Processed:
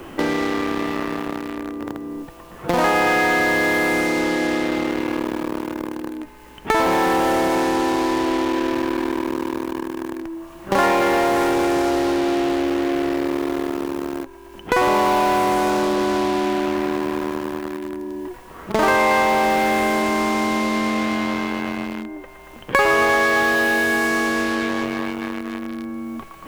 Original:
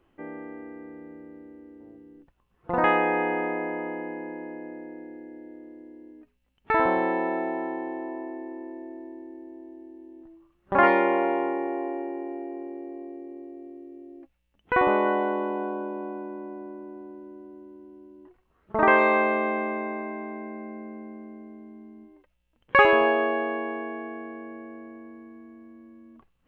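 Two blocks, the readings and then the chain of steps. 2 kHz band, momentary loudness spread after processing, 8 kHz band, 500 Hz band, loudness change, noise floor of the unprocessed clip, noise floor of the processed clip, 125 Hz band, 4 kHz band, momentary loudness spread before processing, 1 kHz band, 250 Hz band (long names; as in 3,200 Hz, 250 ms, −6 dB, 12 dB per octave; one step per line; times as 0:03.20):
+8.0 dB, 14 LU, can't be measured, +6.5 dB, +5.0 dB, −70 dBFS, −41 dBFS, +11.5 dB, +16.0 dB, 24 LU, +7.0 dB, +11.0 dB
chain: mu-law and A-law mismatch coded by mu
low-shelf EQ 80 Hz +6 dB
delay with a band-pass on its return 115 ms, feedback 76%, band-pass 1,300 Hz, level −7 dB
in parallel at −7.5 dB: fuzz pedal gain 40 dB, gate −37 dBFS
on the sum: multiband upward and downward compressor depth 70%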